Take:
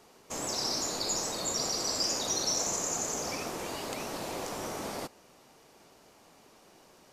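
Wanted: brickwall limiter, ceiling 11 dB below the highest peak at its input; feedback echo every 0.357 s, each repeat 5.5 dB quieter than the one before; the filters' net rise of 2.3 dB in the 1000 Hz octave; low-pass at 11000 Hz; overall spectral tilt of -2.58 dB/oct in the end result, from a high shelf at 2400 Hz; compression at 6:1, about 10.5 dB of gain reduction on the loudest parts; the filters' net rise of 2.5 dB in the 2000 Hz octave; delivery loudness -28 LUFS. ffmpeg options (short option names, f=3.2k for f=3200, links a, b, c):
-af "lowpass=11k,equalizer=f=1k:t=o:g=3,equalizer=f=2k:t=o:g=6.5,highshelf=f=2.4k:g=-8.5,acompressor=threshold=-43dB:ratio=6,alimiter=level_in=17.5dB:limit=-24dB:level=0:latency=1,volume=-17.5dB,aecho=1:1:357|714|1071|1428|1785|2142|2499:0.531|0.281|0.149|0.079|0.0419|0.0222|0.0118,volume=21.5dB"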